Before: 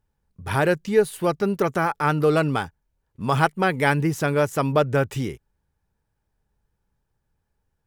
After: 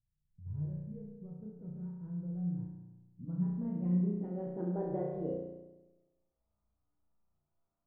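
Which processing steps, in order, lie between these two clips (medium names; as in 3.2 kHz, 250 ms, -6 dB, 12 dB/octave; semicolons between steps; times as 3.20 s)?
pitch bend over the whole clip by +7.5 st starting unshifted; feedback comb 480 Hz, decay 0.41 s, mix 80%; de-hum 118.6 Hz, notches 37; low-pass sweep 130 Hz -> 980 Hz, 2.74–6.63 s; flutter echo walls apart 5.8 m, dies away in 1.1 s; trim -2.5 dB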